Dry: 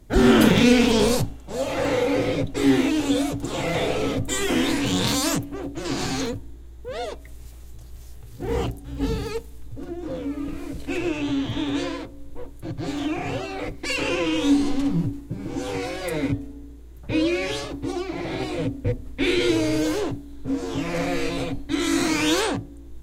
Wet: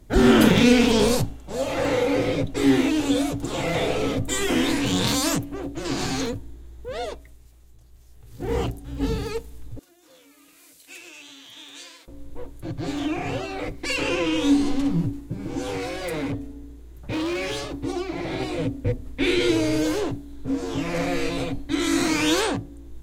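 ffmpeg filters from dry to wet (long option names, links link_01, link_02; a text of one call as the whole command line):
ffmpeg -i in.wav -filter_complex "[0:a]asettb=1/sr,asplit=3[link_01][link_02][link_03];[link_01]atrim=end=9.794[link_04];[link_02]atrim=start=9.79:end=12.08,asetpts=PTS-STARTPTS,afade=type=in:duration=0.004:curve=qsin,afade=type=out:start_time=2.286:duration=0.004:curve=qsin,aderivative[link_05];[link_03]atrim=start=12.076[link_06];[link_04][link_05]acrossfade=duration=0.004:curve1=hsin:curve2=qsin[link_07];[link_07][link_06]acrossfade=duration=0.004:curve1=qsin:curve2=hsin,asettb=1/sr,asplit=3[link_08][link_09][link_10];[link_08]atrim=end=15.744[link_11];[link_09]atrim=start=15.74:end=17.72,asetpts=PTS-STARTPTS,afade=type=in:duration=0.004:curve=qsin,afade=type=out:start_time=1.976:duration=0.004:curve=qsin,asoftclip=type=hard:threshold=-24dB[link_12];[link_10]atrim=start=17.716[link_13];[link_11][link_12]acrossfade=duration=0.004:curve1=hsin:curve2=qsin[link_14];[link_14][link_13]acrossfade=duration=0.004:curve1=qsin:curve2=hsin,asplit=3[link_15][link_16][link_17];[link_15]atrim=end=7.48,asetpts=PTS-STARTPTS,afade=type=out:start_time=7.11:duration=0.37:curve=qua:silence=0.298538[link_18];[link_16]atrim=start=7.48:end=8.03,asetpts=PTS-STARTPTS,volume=-10.5dB[link_19];[link_17]atrim=start=8.03,asetpts=PTS-STARTPTS,afade=type=in:duration=0.37:curve=qua:silence=0.298538[link_20];[link_18][link_19][link_20]concat=n=3:v=0:a=1" out.wav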